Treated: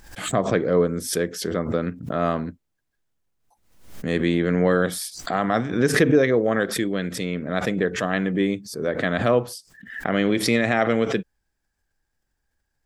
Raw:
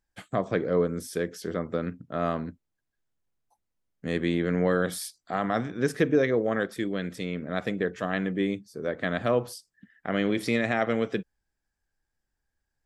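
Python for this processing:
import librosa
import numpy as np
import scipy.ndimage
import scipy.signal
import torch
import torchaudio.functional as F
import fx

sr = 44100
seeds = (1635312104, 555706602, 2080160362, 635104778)

y = fx.pre_swell(x, sr, db_per_s=89.0)
y = y * librosa.db_to_amplitude(5.0)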